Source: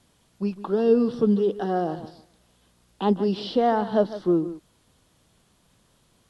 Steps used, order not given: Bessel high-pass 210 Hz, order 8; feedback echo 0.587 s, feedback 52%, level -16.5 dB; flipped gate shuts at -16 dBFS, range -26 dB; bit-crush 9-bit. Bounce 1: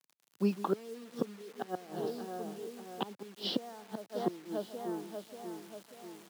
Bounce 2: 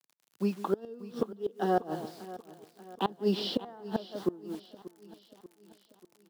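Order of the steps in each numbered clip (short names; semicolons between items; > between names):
feedback echo > flipped gate > bit-crush > Bessel high-pass; bit-crush > Bessel high-pass > flipped gate > feedback echo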